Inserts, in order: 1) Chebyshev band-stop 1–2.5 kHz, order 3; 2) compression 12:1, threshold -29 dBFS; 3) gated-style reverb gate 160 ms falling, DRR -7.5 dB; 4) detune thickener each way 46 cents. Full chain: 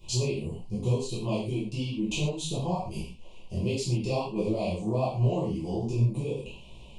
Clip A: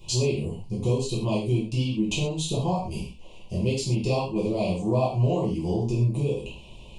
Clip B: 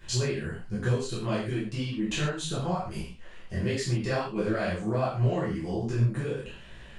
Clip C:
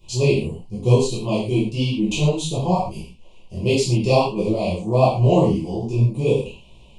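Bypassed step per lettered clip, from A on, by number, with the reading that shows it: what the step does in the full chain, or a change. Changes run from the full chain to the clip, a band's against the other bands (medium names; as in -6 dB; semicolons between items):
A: 4, momentary loudness spread change -1 LU; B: 1, 2 kHz band +7.0 dB; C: 2, mean gain reduction 6.5 dB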